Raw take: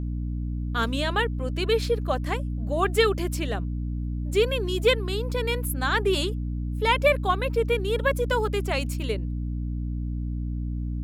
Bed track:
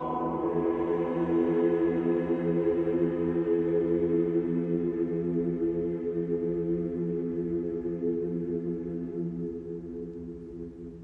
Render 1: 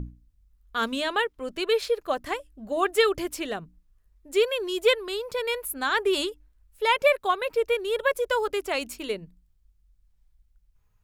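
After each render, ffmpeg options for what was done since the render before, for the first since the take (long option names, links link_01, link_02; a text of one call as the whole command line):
ffmpeg -i in.wav -af "bandreject=frequency=60:width_type=h:width=6,bandreject=frequency=120:width_type=h:width=6,bandreject=frequency=180:width_type=h:width=6,bandreject=frequency=240:width_type=h:width=6,bandreject=frequency=300:width_type=h:width=6" out.wav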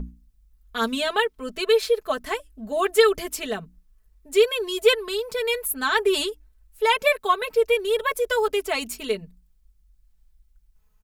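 ffmpeg -i in.wav -af "highshelf=frequency=6200:gain=5,aecho=1:1:4.6:0.84" out.wav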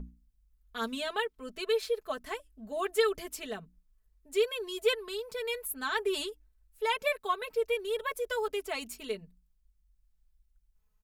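ffmpeg -i in.wav -af "volume=-10dB" out.wav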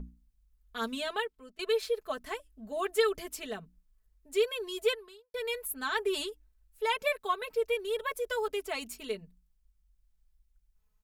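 ffmpeg -i in.wav -filter_complex "[0:a]asplit=3[link_01][link_02][link_03];[link_01]atrim=end=1.59,asetpts=PTS-STARTPTS,afade=type=out:start_time=1.14:duration=0.45:silence=0.1[link_04];[link_02]atrim=start=1.59:end=5.34,asetpts=PTS-STARTPTS,afade=type=in:duration=0.004:curve=hsin:silence=0.1,afade=type=out:start_time=3.26:duration=0.49:curve=qua[link_05];[link_03]atrim=start=5.34,asetpts=PTS-STARTPTS,afade=type=in:duration=0.004:curve=hsin[link_06];[link_04][link_05][link_06]concat=n=3:v=0:a=1" out.wav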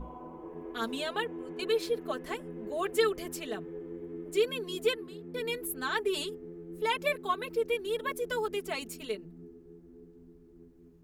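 ffmpeg -i in.wav -i bed.wav -filter_complex "[1:a]volume=-15.5dB[link_01];[0:a][link_01]amix=inputs=2:normalize=0" out.wav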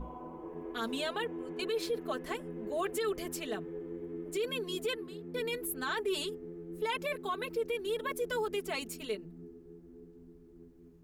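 ffmpeg -i in.wav -af "alimiter=level_in=1.5dB:limit=-24dB:level=0:latency=1:release=14,volume=-1.5dB" out.wav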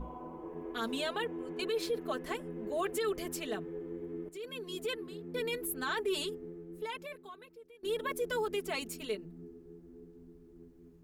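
ffmpeg -i in.wav -filter_complex "[0:a]asplit=3[link_01][link_02][link_03];[link_01]atrim=end=4.29,asetpts=PTS-STARTPTS,afade=type=out:start_time=4.286:duration=0.004:curve=hsin:silence=0.211349[link_04];[link_02]atrim=start=4.29:end=7.83,asetpts=PTS-STARTPTS,afade=type=in:duration=0.8:silence=0.211349,afade=type=out:start_time=2.15:duration=1.39:curve=qua:silence=0.0707946[link_05];[link_03]atrim=start=7.83,asetpts=PTS-STARTPTS,afade=type=in:duration=0.004:curve=hsin:silence=0.0707946[link_06];[link_04][link_05][link_06]concat=n=3:v=0:a=1" out.wav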